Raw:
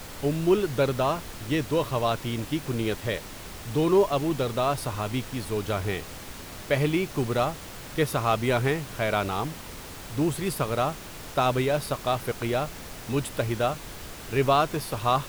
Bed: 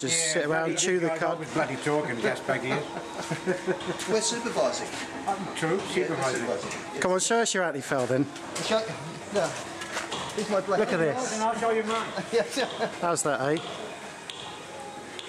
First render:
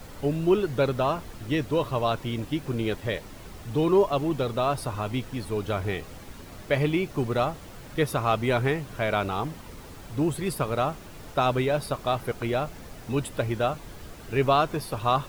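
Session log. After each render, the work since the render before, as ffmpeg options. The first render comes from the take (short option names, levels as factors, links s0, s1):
-af "afftdn=nr=8:nf=-41"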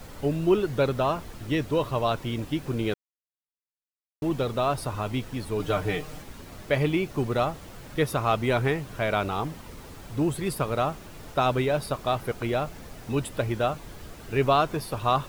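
-filter_complex "[0:a]asettb=1/sr,asplit=3[s0][s1][s2];[s0]atrim=end=5.594[s3];[s1]atrim=start=5.59:end=6.22,asetpts=PTS-STARTPTS,afade=t=in:d=0.004:c=qsin,afade=t=out:st=0.626:d=0.004:c=qsin,aecho=1:1:6.6:0.86,atrim=end_sample=27783[s4];[s2]atrim=start=6.216[s5];[s3][s4]acrossfade=d=0.004:c1=hsin:c2=qsin[s6];[s6][s5]acrossfade=d=0.004:c1=qsin:c2=hsin,asplit=3[s7][s8][s9];[s7]atrim=end=2.94,asetpts=PTS-STARTPTS,afade=t=out:st=2.936:d=0.004:c=hsin[s10];[s8]atrim=start=2.94:end=4.22,asetpts=PTS-STARTPTS,volume=0[s11];[s9]atrim=start=4.22,asetpts=PTS-STARTPTS,afade=t=in:d=0.004:c=hsin[s12];[s10][s11][s12]concat=n=3:v=0:a=1"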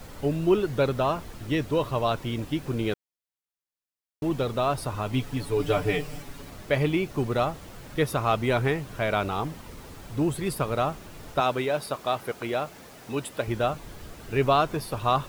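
-filter_complex "[0:a]asettb=1/sr,asplit=3[s0][s1][s2];[s0]atrim=end=5.124[s3];[s1]atrim=start=5.12:end=6.5,asetpts=PTS-STARTPTS,afade=t=in:d=0.004:c=qsin,afade=t=out:st=1.376:d=0.004:c=qsin,aecho=1:1:7:0.65,atrim=end_sample=60858[s4];[s2]atrim=start=6.496[s5];[s3][s4]acrossfade=d=0.004:c1=hsin:c2=qsin[s6];[s6][s5]acrossfade=d=0.004:c1=qsin:c2=hsin,asettb=1/sr,asplit=3[s7][s8][s9];[s7]atrim=end=11.404[s10];[s8]atrim=start=11.4:end=13.48,asetpts=PTS-STARTPTS,afade=t=in:d=0.004:c=qsin,afade=t=out:st=2.076:d=0.004:c=qsin,highpass=f=290:p=1[s11];[s9]atrim=start=13.476[s12];[s10][s11]acrossfade=d=0.004:c1=hsin:c2=qsin[s13];[s13][s12]acrossfade=d=0.004:c1=qsin:c2=hsin"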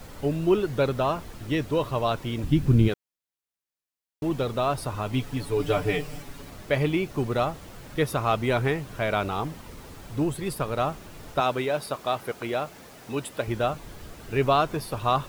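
-filter_complex "[0:a]asplit=3[s0][s1][s2];[s0]afade=t=out:st=2.43:d=0.02[s3];[s1]asubboost=boost=7.5:cutoff=240,afade=t=in:st=2.43:d=0.02,afade=t=out:st=2.87:d=0.02[s4];[s2]afade=t=in:st=2.87:d=0.02[s5];[s3][s4][s5]amix=inputs=3:normalize=0,asettb=1/sr,asplit=3[s6][s7][s8];[s6]atrim=end=10.244[s9];[s7]atrim=start=10.24:end=10.8,asetpts=PTS-STARTPTS,afade=t=in:d=0.004:c=qsin,afade=t=out:st=0.556:d=0.004:c=qsin,aeval=exprs='if(lt(val(0),0),0.708*val(0),val(0))':c=same[s10];[s8]atrim=start=10.796[s11];[s9][s10]acrossfade=d=0.004:c1=hsin:c2=qsin[s12];[s12][s11]acrossfade=d=0.004:c1=qsin:c2=hsin"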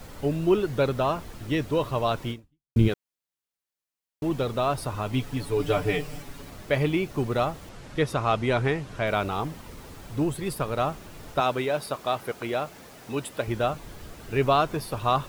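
-filter_complex "[0:a]asettb=1/sr,asplit=3[s0][s1][s2];[s0]atrim=end=7.694[s3];[s1]atrim=start=7.69:end=9.07,asetpts=PTS-STARTPTS,afade=t=in:d=0.004:c=qsin,afade=t=out:st=1.376:d=0.004:c=qsin,lowpass=8300[s4];[s2]atrim=start=9.066[s5];[s3][s4]acrossfade=d=0.004:c1=hsin:c2=qsin[s6];[s6][s5]acrossfade=d=0.004:c1=qsin:c2=hsin,asplit=2[s7][s8];[s7]atrim=end=2.76,asetpts=PTS-STARTPTS,afade=t=out:st=2.31:d=0.45:c=exp[s9];[s8]atrim=start=2.76,asetpts=PTS-STARTPTS,afade=t=in:d=0.004:c=hsin[s10];[s9][s10]concat=n=2:v=0:a=1"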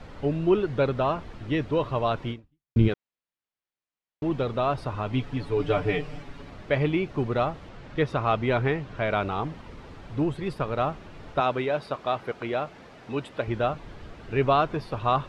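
-af "lowpass=3400"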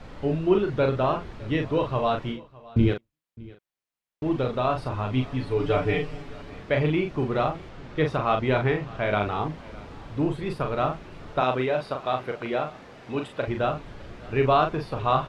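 -filter_complex "[0:a]asplit=2[s0][s1];[s1]adelay=39,volume=0.562[s2];[s0][s2]amix=inputs=2:normalize=0,aecho=1:1:610:0.0794"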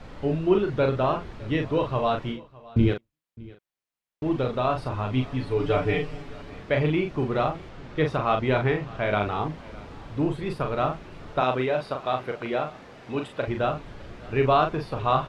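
-af anull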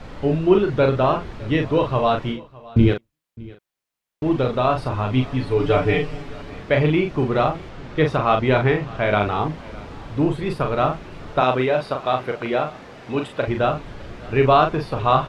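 -af "volume=1.88"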